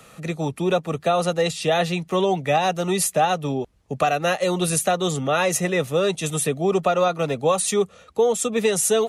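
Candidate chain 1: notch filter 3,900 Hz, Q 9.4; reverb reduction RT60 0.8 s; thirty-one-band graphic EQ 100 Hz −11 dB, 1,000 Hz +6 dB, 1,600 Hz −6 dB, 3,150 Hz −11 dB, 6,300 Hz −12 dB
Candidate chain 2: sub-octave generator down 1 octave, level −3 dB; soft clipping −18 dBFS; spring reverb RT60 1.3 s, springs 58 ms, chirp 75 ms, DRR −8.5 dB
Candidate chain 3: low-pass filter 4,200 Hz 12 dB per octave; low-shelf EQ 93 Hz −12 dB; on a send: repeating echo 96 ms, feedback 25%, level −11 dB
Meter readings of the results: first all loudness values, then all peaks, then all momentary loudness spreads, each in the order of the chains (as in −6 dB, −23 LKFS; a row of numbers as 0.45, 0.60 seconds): −23.0, −16.0, −22.5 LKFS; −7.0, −3.0, −7.5 dBFS; 5, 3, 5 LU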